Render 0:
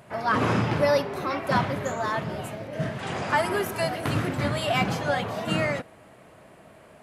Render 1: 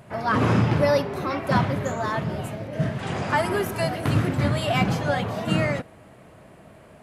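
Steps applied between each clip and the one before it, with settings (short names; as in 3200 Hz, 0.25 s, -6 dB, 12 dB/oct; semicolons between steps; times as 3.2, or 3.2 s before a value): low shelf 250 Hz +7.5 dB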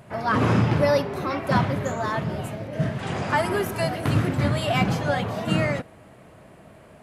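nothing audible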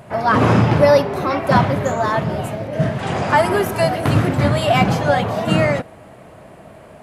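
bell 710 Hz +4 dB 1.2 oct; gain +5.5 dB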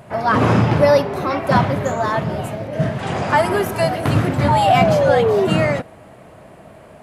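painted sound fall, 4.48–5.47, 370–940 Hz -15 dBFS; gain -1 dB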